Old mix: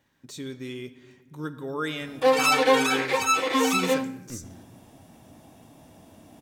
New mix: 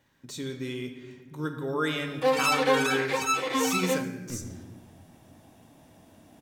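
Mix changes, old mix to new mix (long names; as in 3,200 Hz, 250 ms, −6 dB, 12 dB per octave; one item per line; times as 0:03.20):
speech: send +7.5 dB
background −4.0 dB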